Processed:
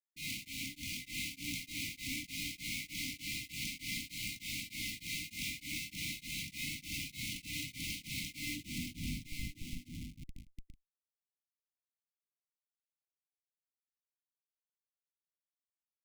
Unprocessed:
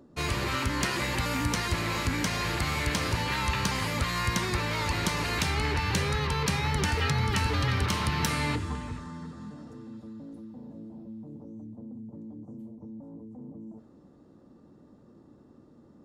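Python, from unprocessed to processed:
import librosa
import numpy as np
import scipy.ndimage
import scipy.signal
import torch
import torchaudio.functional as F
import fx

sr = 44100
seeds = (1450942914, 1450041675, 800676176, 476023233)

y = fx.weighting(x, sr, curve='A')
y = fx.over_compress(y, sr, threshold_db=-34.0, ratio=-1.0)
y = fx.schmitt(y, sr, flips_db=-39.5)
y = fx.brickwall_bandstop(y, sr, low_hz=320.0, high_hz=2000.0)
y = y + 10.0 ** (-5.0 / 20.0) * np.pad(y, (int(970 * sr / 1000.0), 0))[:len(y)]
y = y * np.abs(np.cos(np.pi * 3.3 * np.arange(len(y)) / sr))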